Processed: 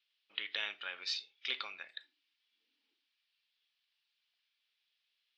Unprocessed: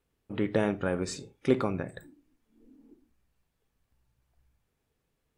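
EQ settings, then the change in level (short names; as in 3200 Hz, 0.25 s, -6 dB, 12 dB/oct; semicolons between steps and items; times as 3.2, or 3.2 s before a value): Butterworth band-pass 4100 Hz, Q 1.6; air absorption 290 m; +18.0 dB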